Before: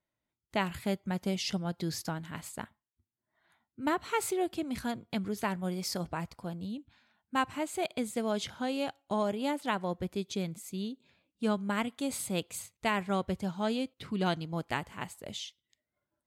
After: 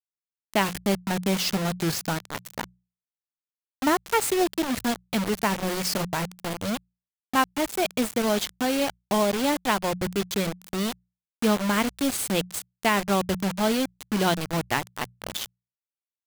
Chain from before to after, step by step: bit crusher 6-bit; hum notches 60/120/180 Hz; trim +7.5 dB

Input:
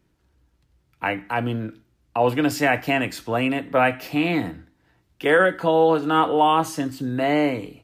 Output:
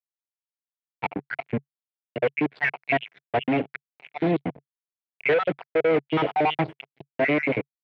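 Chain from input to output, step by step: random holes in the spectrogram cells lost 74%; fuzz box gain 28 dB, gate -37 dBFS; cabinet simulation 110–2900 Hz, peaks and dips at 140 Hz +6 dB, 420 Hz +5 dB, 680 Hz +4 dB, 1.2 kHz -6 dB, 2.2 kHz +7 dB; trim -7 dB

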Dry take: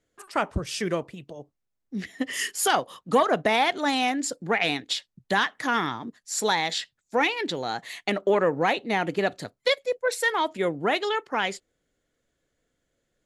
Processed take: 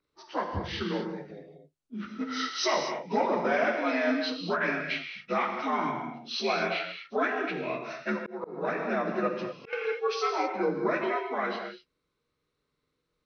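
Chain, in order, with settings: frequency axis rescaled in octaves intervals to 83%; gated-style reverb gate 270 ms flat, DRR 3.5 dB; 8.13–9.73 s: slow attack 380 ms; trim -3 dB

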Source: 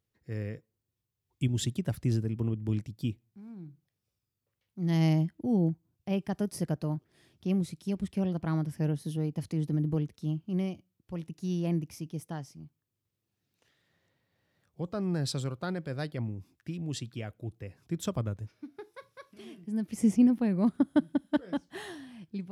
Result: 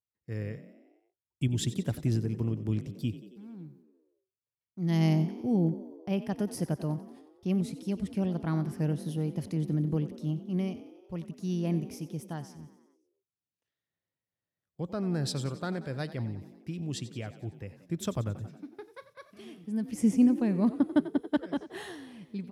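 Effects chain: gate -59 dBFS, range -20 dB; on a send: frequency-shifting echo 91 ms, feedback 60%, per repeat +40 Hz, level -15 dB

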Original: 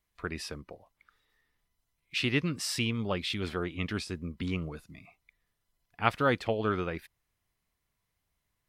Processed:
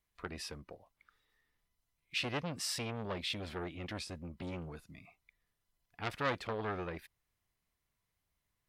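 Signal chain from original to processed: transformer saturation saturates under 3.5 kHz; trim -3.5 dB

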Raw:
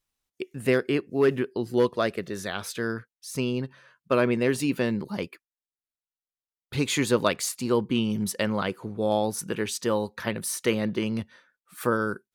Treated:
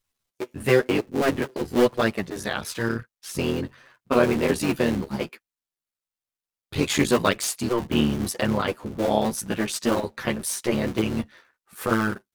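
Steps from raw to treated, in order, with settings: cycle switcher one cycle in 3, muted; chorus voices 2, 1 Hz, delay 11 ms, depth 3 ms; trim +7 dB

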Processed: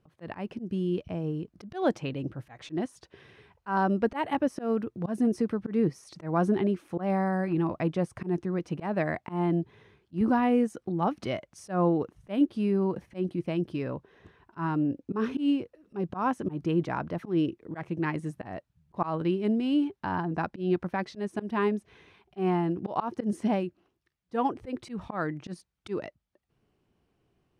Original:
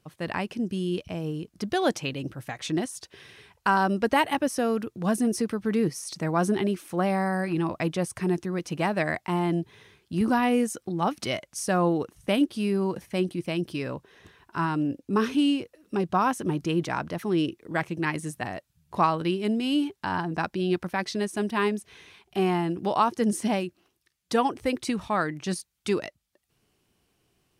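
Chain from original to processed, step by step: low-pass 1.1 kHz 6 dB/octave; slow attack 123 ms

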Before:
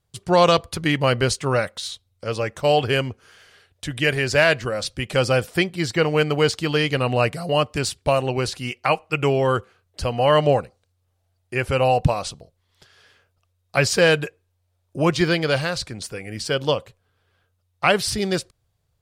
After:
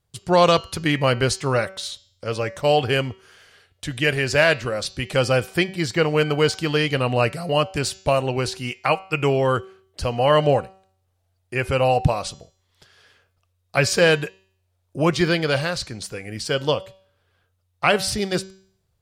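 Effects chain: de-hum 190.7 Hz, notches 40

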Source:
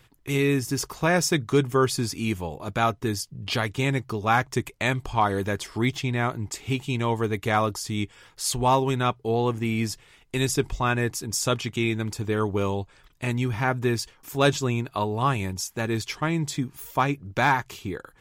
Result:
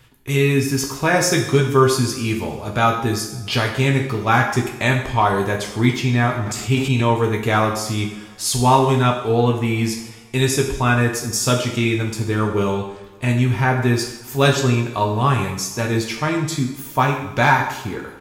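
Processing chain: doubling 15 ms -11.5 dB; two-slope reverb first 0.74 s, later 2.4 s, DRR 1.5 dB; 6.41–7.13 s: transient shaper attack +1 dB, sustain +7 dB; trim +3.5 dB

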